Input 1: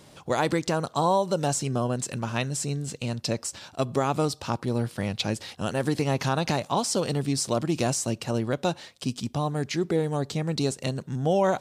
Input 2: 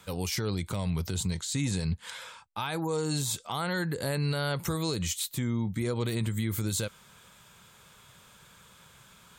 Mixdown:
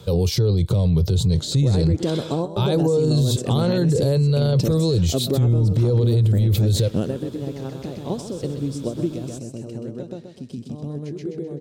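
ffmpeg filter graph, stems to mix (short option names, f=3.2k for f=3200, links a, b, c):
-filter_complex "[0:a]acompressor=threshold=-28dB:ratio=6,adelay=1350,volume=-0.5dB,asplit=2[a][b];[b]volume=-13.5dB[c];[1:a]equalizer=f=125:t=o:w=1:g=10,equalizer=f=250:t=o:w=1:g=-10,equalizer=f=500:t=o:w=1:g=5,equalizer=f=1k:t=o:w=1:g=4,equalizer=f=2k:t=o:w=1:g=-8,equalizer=f=4k:t=o:w=1:g=10,equalizer=f=8k:t=o:w=1:g=-4,volume=3dB,asplit=2[d][e];[e]apad=whole_len=571404[f];[a][f]sidechaingate=range=-16dB:threshold=-48dB:ratio=16:detection=peak[g];[c]aecho=0:1:128|256|384|512|640|768:1|0.41|0.168|0.0689|0.0283|0.0116[h];[g][d][h]amix=inputs=3:normalize=0,lowshelf=f=630:t=q:w=1.5:g=12,alimiter=limit=-12dB:level=0:latency=1:release=13"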